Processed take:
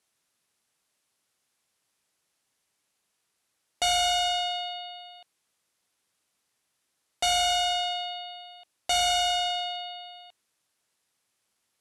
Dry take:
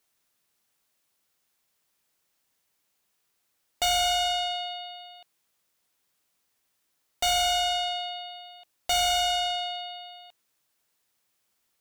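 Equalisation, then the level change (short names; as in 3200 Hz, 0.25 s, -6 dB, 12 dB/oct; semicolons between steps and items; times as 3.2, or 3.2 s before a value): HPF 52 Hz; steep low-pass 12000 Hz 96 dB/oct; 0.0 dB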